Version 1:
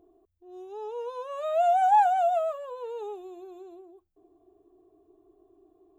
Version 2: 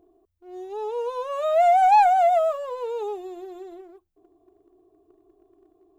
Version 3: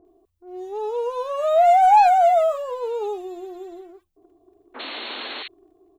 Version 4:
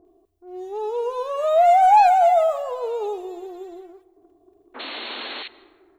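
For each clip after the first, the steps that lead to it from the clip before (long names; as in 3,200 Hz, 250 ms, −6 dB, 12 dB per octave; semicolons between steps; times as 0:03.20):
leveller curve on the samples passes 1; level +3 dB
sound drawn into the spectrogram noise, 0:04.74–0:05.43, 220–4,400 Hz −35 dBFS; multiband delay without the direct sound lows, highs 50 ms, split 1,600 Hz; level +3 dB
dense smooth reverb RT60 1.7 s, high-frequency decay 0.4×, pre-delay 115 ms, DRR 18.5 dB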